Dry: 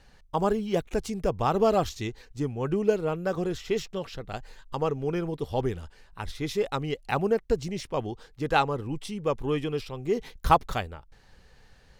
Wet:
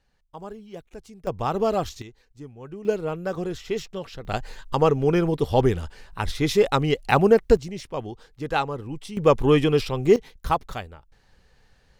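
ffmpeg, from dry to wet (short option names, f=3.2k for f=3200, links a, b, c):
-af "asetnsamples=n=441:p=0,asendcmd='1.27 volume volume -0.5dB;2.02 volume volume -11dB;2.85 volume volume 0dB;4.25 volume volume 8.5dB;7.57 volume volume -1dB;9.17 volume volume 10dB;10.16 volume volume -3dB',volume=-13dB"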